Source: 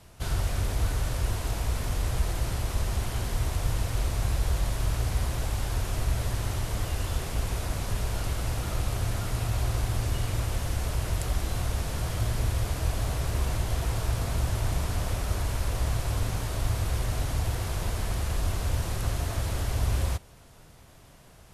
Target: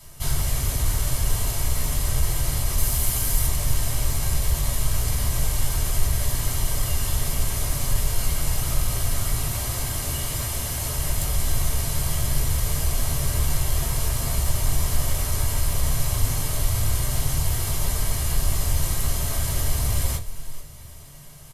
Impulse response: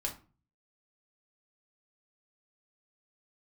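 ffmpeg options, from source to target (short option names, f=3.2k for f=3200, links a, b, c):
-filter_complex "[0:a]asettb=1/sr,asplit=3[a][b][c];[a]atrim=end=2.784[d];[b]atrim=start=2.78:end=3.47,asetpts=PTS-STARTPTS,afade=t=in:d=0.004:c=qsin,afade=t=out:st=0.686:d=0.004:c=qsin,highshelf=f=8.3k:g=9[e];[c]atrim=start=3.466[f];[d][e]acrossfade=d=0.004:c1=hsin:c2=qsin[g];[g][f]acrossfade=d=0.004:c1=qsin:c2=hsin,asettb=1/sr,asplit=3[h][i][j];[h]atrim=end=9.494[k];[i]atrim=start=9.49:end=10.99,asetpts=PTS-STARTPTS,afade=t=in:d=0.004:c=qsin,afade=t=out:st=1.496:d=0.004:c=qsin,highpass=f=98:p=1[l];[j]atrim=start=10.986[m];[k][l]acrossfade=d=0.004:c1=hsin:c2=qsin[n];[n][m]acrossfade=d=0.004:c1=qsin:c2=hsin,aemphasis=mode=production:type=75kf,asoftclip=type=tanh:threshold=-16.5dB,asplit=4[o][p][q][r];[p]adelay=437,afreqshift=-71,volume=-16dB[s];[q]adelay=874,afreqshift=-142,volume=-25.4dB[t];[r]adelay=1311,afreqshift=-213,volume=-34.7dB[u];[o][s][t][u]amix=inputs=4:normalize=0[v];[1:a]atrim=start_sample=2205,asetrate=83790,aresample=44100[w];[v][w]afir=irnorm=-1:irlink=0,volume=5dB"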